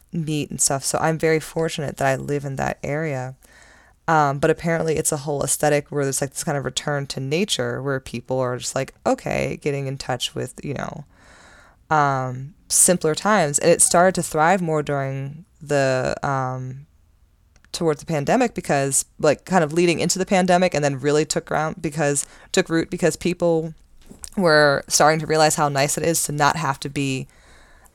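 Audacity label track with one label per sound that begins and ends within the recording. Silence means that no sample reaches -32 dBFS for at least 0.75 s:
11.900000	16.770000	sound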